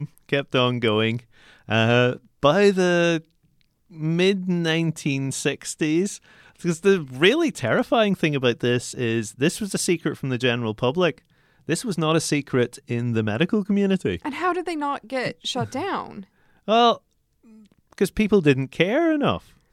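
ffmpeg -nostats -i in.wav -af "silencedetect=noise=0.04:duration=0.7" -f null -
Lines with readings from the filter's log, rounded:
silence_start: 3.18
silence_end: 4.01 | silence_duration: 0.82
silence_start: 16.95
silence_end: 17.98 | silence_duration: 1.03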